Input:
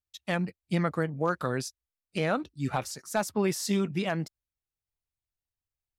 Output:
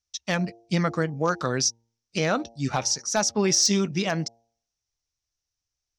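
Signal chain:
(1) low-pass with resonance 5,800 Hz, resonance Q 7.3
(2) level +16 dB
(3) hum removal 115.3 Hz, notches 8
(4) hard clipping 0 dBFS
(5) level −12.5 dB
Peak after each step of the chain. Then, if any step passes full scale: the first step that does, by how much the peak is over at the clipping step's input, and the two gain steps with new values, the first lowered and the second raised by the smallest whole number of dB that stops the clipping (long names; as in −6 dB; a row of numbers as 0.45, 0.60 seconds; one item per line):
−9.5, +6.5, +6.5, 0.0, −12.5 dBFS
step 2, 6.5 dB
step 2 +9 dB, step 5 −5.5 dB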